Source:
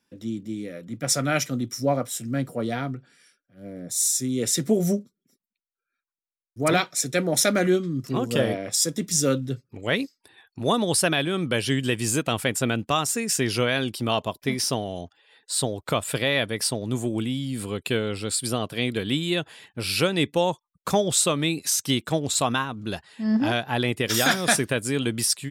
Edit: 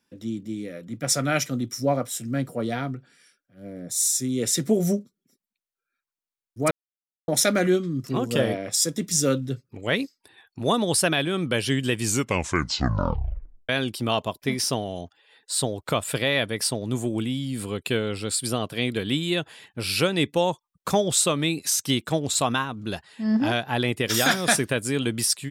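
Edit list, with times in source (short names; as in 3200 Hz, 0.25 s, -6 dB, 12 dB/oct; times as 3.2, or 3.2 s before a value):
6.71–7.28 mute
12 tape stop 1.69 s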